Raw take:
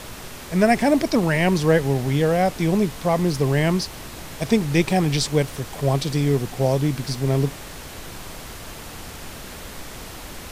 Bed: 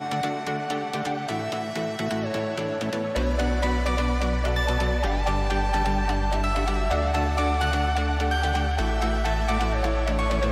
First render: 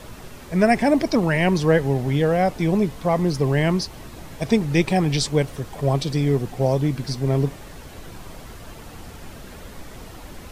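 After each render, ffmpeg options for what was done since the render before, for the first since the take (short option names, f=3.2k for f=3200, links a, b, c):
-af "afftdn=nr=8:nf=-37"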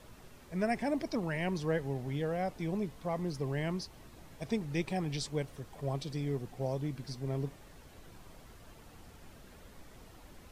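-af "volume=-15dB"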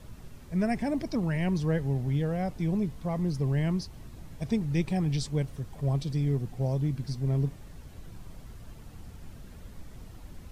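-af "bass=f=250:g=11,treble=f=4k:g=2"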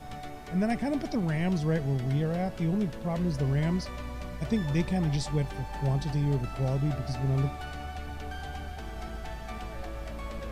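-filter_complex "[1:a]volume=-15.5dB[a];[0:a][a]amix=inputs=2:normalize=0"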